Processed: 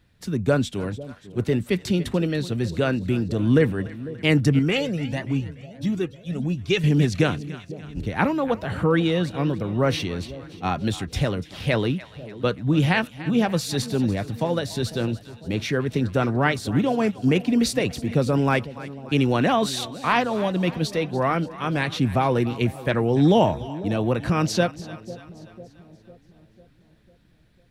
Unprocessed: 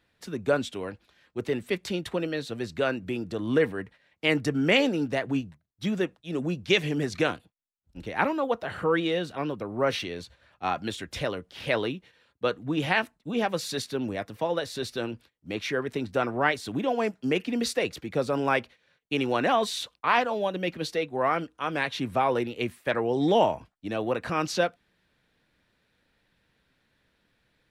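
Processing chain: tone controls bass +14 dB, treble +4 dB; two-band feedback delay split 690 Hz, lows 499 ms, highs 290 ms, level -16 dB; 4.59–6.84 s: Shepard-style flanger rising 1.5 Hz; trim +1.5 dB

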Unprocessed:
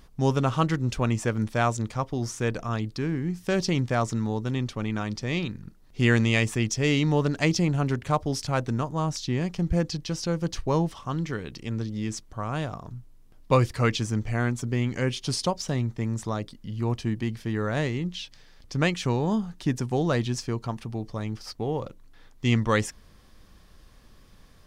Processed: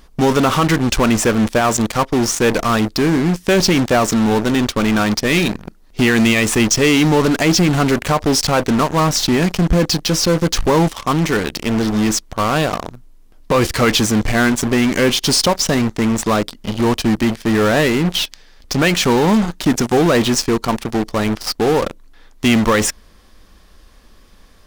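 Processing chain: peaking EQ 120 Hz -12.5 dB 0.77 oct; in parallel at -10 dB: fuzz box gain 42 dB, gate -39 dBFS; on the sum: loudness maximiser +12 dB; trim -4.5 dB

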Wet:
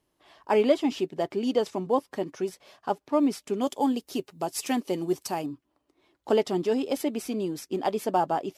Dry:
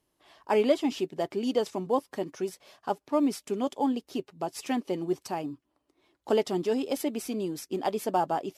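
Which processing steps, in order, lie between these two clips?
treble shelf 5.6 kHz -4.5 dB, from 3.61 s +9 dB, from 5.46 s -3.5 dB; trim +2 dB

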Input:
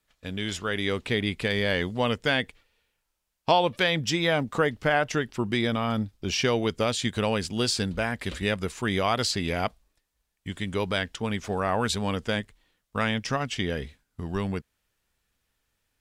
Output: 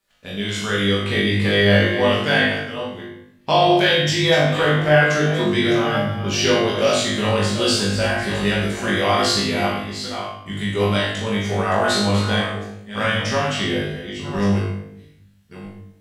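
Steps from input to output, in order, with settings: chunks repeated in reverse 602 ms, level -10 dB; bass shelf 90 Hz -9.5 dB; on a send: flutter echo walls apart 3.4 m, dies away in 0.53 s; on the sum: simulated room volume 160 m³, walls mixed, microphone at 1.2 m

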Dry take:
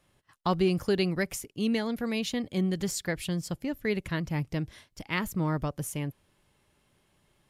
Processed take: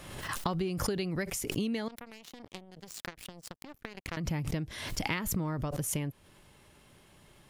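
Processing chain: compression 10:1, threshold -39 dBFS, peak gain reduction 18.5 dB; 1.88–4.17 s: power-law waveshaper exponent 3; swell ahead of each attack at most 46 dB/s; trim +9 dB

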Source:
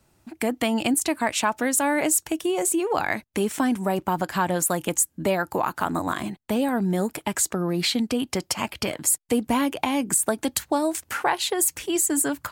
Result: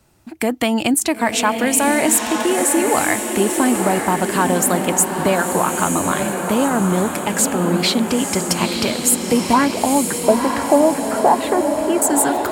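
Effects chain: 9.53–12.02 s: LFO low-pass sine 2.2 Hz 600–1700 Hz; echo that smears into a reverb 952 ms, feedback 54%, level -4.5 dB; trim +5.5 dB

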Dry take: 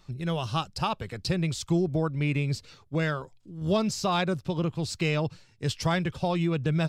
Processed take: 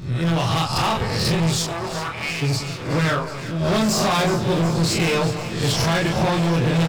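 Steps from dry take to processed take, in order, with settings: reverse spectral sustain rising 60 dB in 0.47 s; early reflections 24 ms -4.5 dB, 42 ms -5.5 dB; overload inside the chain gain 26 dB; 1.56–2.41 s: high-pass 530 Hz -> 1.1 kHz 12 dB/octave; echo whose repeats swap between lows and highs 185 ms, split 1.4 kHz, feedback 87%, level -11 dB; trim +8.5 dB

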